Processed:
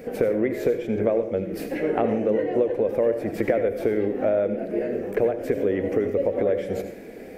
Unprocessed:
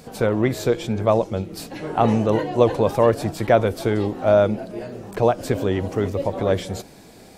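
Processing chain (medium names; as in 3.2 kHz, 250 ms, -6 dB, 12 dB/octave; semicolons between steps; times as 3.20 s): ten-band graphic EQ 125 Hz -8 dB, 250 Hz +5 dB, 500 Hz +12 dB, 1 kHz -11 dB, 2 kHz +11 dB, 4 kHz -11 dB, 8 kHz -9 dB; compression, threshold -20 dBFS, peak gain reduction 17 dB; on a send: reverberation RT60 0.45 s, pre-delay 67 ms, DRR 8.5 dB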